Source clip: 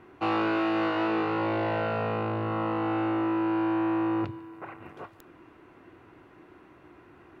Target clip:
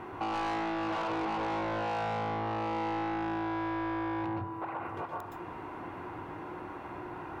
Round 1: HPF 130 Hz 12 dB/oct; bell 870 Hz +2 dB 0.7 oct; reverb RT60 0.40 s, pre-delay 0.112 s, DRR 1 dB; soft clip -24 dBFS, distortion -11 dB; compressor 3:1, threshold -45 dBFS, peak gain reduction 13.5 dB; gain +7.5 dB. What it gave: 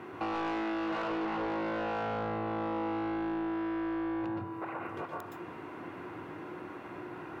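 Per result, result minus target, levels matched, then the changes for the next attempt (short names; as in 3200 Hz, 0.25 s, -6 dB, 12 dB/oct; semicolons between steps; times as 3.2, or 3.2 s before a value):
125 Hz band -3.0 dB; 1000 Hz band -3.0 dB
remove: HPF 130 Hz 12 dB/oct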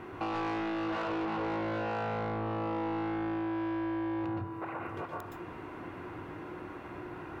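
1000 Hz band -3.0 dB
change: bell 870 Hz +9.5 dB 0.7 oct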